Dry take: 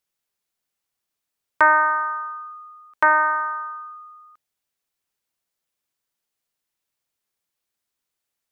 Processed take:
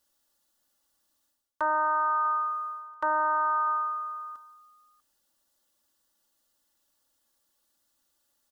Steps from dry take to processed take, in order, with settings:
parametric band 2,300 Hz −14 dB 0.37 octaves
comb filter 3.5 ms, depth 87%
reversed playback
downward compressor 12 to 1, threshold −30 dBFS, peak gain reduction 20 dB
reversed playback
single-tap delay 644 ms −22 dB
level +6 dB

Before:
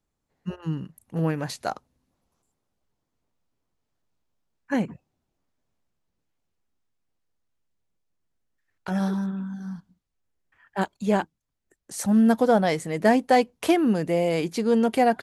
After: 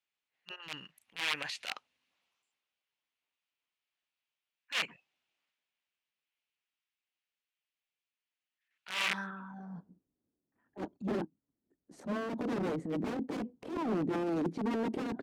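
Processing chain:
0:09.51–0:10.98: tilt shelving filter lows +3.5 dB
wrap-around overflow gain 20.5 dB
band-pass filter sweep 2,700 Hz → 280 Hz, 0:09.03–0:10.07
transient designer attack −12 dB, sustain +5 dB
level +5 dB

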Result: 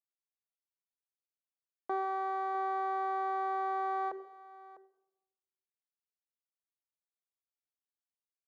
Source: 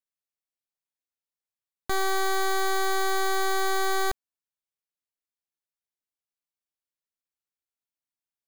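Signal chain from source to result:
spectral tilt +3 dB per octave
leveller curve on the samples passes 2
flat-topped band-pass 550 Hz, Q 0.92
single-tap delay 651 ms −18 dB
rectangular room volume 3,600 cubic metres, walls furnished, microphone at 0.7 metres
every ending faded ahead of time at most 180 dB per second
level −5.5 dB

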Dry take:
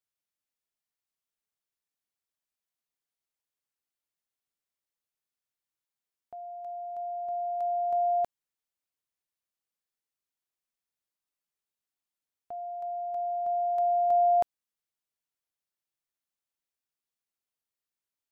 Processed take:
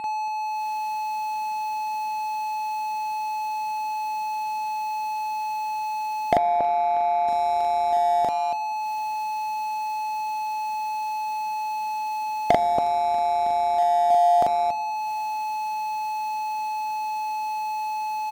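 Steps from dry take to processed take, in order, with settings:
camcorder AGC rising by 47 dB per second
steady tone 860 Hz −35 dBFS
parametric band 220 Hz +8 dB 2.3 octaves
loudspeakers that aren't time-aligned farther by 14 metres −2 dB, 96 metres −12 dB
leveller curve on the samples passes 3
on a send at −16 dB: convolution reverb RT60 2.2 s, pre-delay 5 ms
0:06.37–0:07.28: on the sum: mid-hump overdrive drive 11 dB, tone 1,000 Hz, clips at −6.5 dBFS
level −5.5 dB

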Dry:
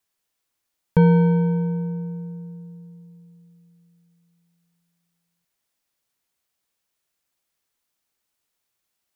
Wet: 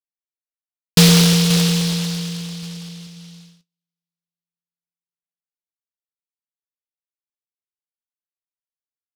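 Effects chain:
0:02.62–0:03.07: comb filter 6.6 ms, depth 56%
single-tap delay 537 ms −12.5 dB
noise gate −47 dBFS, range −40 dB
regular buffer underruns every 0.12 s, samples 256, repeat, from 0:00.84
short delay modulated by noise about 4,000 Hz, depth 0.38 ms
level +4 dB

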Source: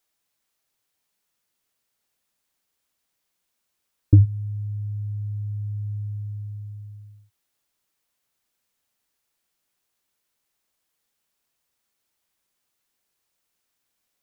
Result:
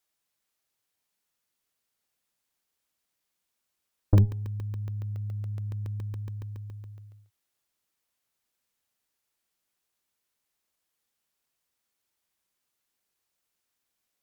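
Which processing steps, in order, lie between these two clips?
tube saturation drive 13 dB, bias 0.7
hum removal 136.4 Hz, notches 7
regular buffer underruns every 0.14 s, samples 64, zero, from 0:00.68

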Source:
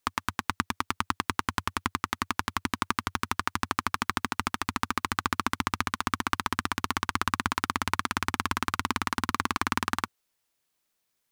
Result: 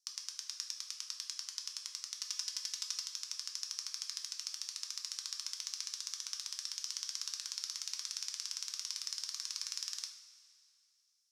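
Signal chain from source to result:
0:02.16–0:03.03: comb filter 4 ms, depth 83%
in parallel at −1 dB: brickwall limiter −15.5 dBFS, peak gain reduction 11 dB
on the sum: four-pole ladder band-pass 5,800 Hz, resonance 70%
convolution reverb, pre-delay 3 ms, DRR 2.5 dB
level +2 dB

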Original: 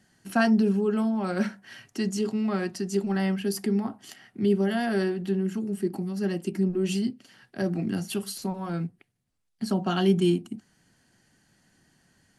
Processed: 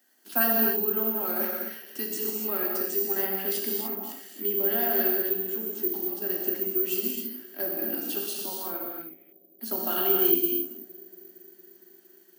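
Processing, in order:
Butterworth high-pass 250 Hz 48 dB per octave
bucket-brigade delay 230 ms, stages 1,024, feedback 80%, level −24 dB
reverb whose tail is shaped and stops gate 320 ms flat, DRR −1.5 dB
bad sample-rate conversion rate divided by 3×, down none, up zero stuff
level −5.5 dB

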